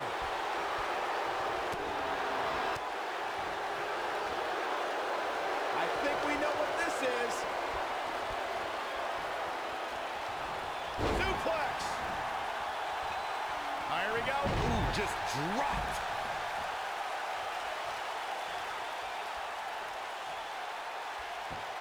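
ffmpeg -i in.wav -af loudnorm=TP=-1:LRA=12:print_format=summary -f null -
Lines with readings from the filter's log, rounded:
Input Integrated:    -35.1 LUFS
Input True Peak:     -19.7 dBTP
Input LRA:             5.8 LU
Input Threshold:     -45.1 LUFS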